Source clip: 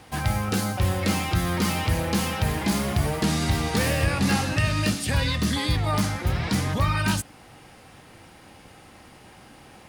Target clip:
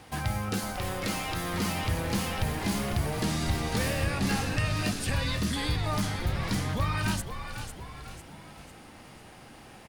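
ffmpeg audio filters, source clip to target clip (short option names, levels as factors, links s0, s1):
-filter_complex "[0:a]asettb=1/sr,asplit=3[s0][s1][s2];[s0]atrim=end=0.594[s3];[s1]atrim=start=0.59:end=1.54,asetpts=PTS-STARTPTS,afade=t=in:d=0.004:c=qsin,afade=t=out:st=0.946:d=0.004:c=qsin,highpass=f=270:p=1[s4];[s2]atrim=start=1.536[s5];[s3][s4]acrossfade=d=0.004:c1=hsin:c2=qsin[s6];[s6][s5]acrossfade=d=0.004:c1=qsin:c2=hsin,asplit=2[s7][s8];[s8]acompressor=threshold=0.0251:ratio=6,volume=1[s9];[s7][s9]amix=inputs=2:normalize=0,asplit=6[s10][s11][s12][s13][s14][s15];[s11]adelay=499,afreqshift=-84,volume=0.376[s16];[s12]adelay=998,afreqshift=-168,volume=0.176[s17];[s13]adelay=1497,afreqshift=-252,volume=0.0832[s18];[s14]adelay=1996,afreqshift=-336,volume=0.0389[s19];[s15]adelay=2495,afreqshift=-420,volume=0.0184[s20];[s10][s16][s17][s18][s19][s20]amix=inputs=6:normalize=0,volume=0.398"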